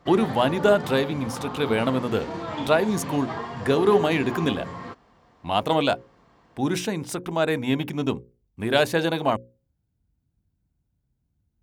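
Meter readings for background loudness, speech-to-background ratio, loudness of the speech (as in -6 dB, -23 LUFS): -34.0 LUFS, 10.0 dB, -24.0 LUFS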